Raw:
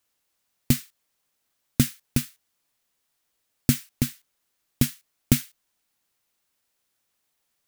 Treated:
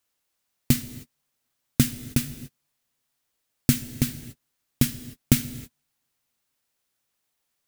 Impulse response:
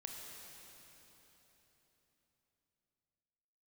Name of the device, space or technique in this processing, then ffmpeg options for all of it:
keyed gated reverb: -filter_complex "[0:a]asplit=3[link_01][link_02][link_03];[1:a]atrim=start_sample=2205[link_04];[link_02][link_04]afir=irnorm=-1:irlink=0[link_05];[link_03]apad=whole_len=338607[link_06];[link_05][link_06]sidechaingate=range=-50dB:threshold=-56dB:ratio=16:detection=peak,volume=-3.5dB[link_07];[link_01][link_07]amix=inputs=2:normalize=0,volume=-2dB"

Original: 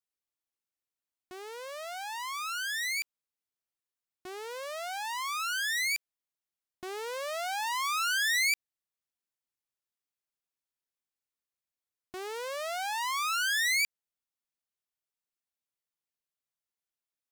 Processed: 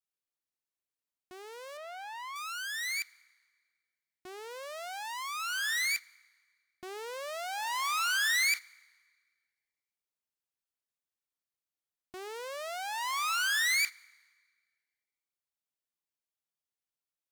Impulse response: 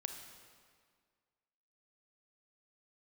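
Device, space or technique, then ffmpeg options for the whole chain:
keyed gated reverb: -filter_complex "[0:a]asettb=1/sr,asplit=3[link_01][link_02][link_03];[link_01]atrim=end=1.774[link_04];[link_02]atrim=start=1.77:end=2.36,asetpts=PTS-STARTPTS,afade=type=in:duration=0.004:curve=qsin,afade=type=out:start_time=0.586:duration=0.004:curve=qsin,bass=frequency=250:gain=12,treble=frequency=4000:gain=-11[link_05];[link_03]atrim=start=2.356[link_06];[link_04][link_05]acrossfade=duration=0.004:curve1=hsin:curve2=qsin[link_07];[link_07][link_06]acrossfade=duration=0.004:curve1=qsin:curve2=hsin,asplit=3[link_08][link_09][link_10];[1:a]atrim=start_sample=2205[link_11];[link_09][link_11]afir=irnorm=-1:irlink=0[link_12];[link_10]apad=whole_len=763789[link_13];[link_12][link_13]sidechaingate=range=-12dB:threshold=-32dB:ratio=16:detection=peak,volume=-1dB[link_14];[link_08][link_14]amix=inputs=2:normalize=0,volume=-5dB"

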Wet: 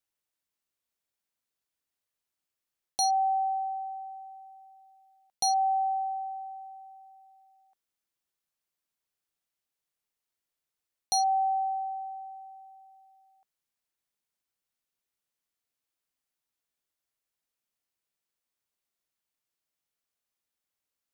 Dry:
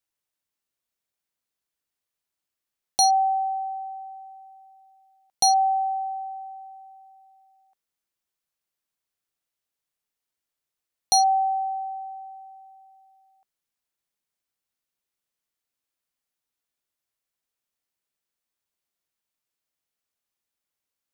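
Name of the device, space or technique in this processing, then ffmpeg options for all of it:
compression on the reversed sound: -af "areverse,acompressor=threshold=-22dB:ratio=5,areverse,volume=-2dB"

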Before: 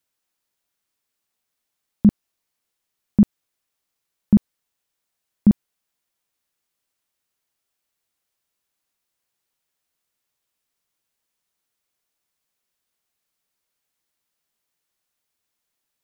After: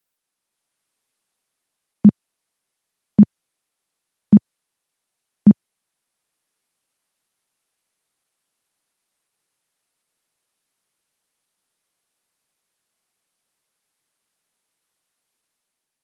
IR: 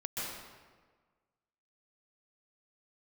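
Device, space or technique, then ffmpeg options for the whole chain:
video call: -af "highpass=frequency=110:width=0.5412,highpass=frequency=110:width=1.3066,dynaudnorm=framelen=130:gausssize=9:maxgain=5dB,volume=1dB" -ar 48000 -c:a libopus -b:a 24k

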